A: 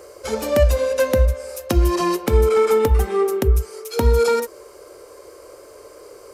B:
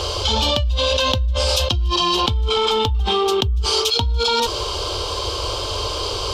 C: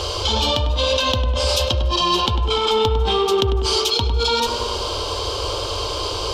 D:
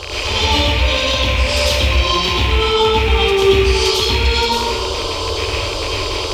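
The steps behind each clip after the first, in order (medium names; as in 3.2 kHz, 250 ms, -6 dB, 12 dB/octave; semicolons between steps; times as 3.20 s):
FFT filter 100 Hz 0 dB, 150 Hz -15 dB, 550 Hz -22 dB, 890 Hz -8 dB, 2 kHz -23 dB, 3.2 kHz +7 dB, 11 kHz -28 dB; level flattener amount 100%; trim -7 dB
tape echo 100 ms, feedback 79%, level -6 dB, low-pass 1.9 kHz; trim -1 dB
rattle on loud lows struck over -26 dBFS, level -9 dBFS; reverberation RT60 0.80 s, pre-delay 89 ms, DRR -7 dB; trim -5 dB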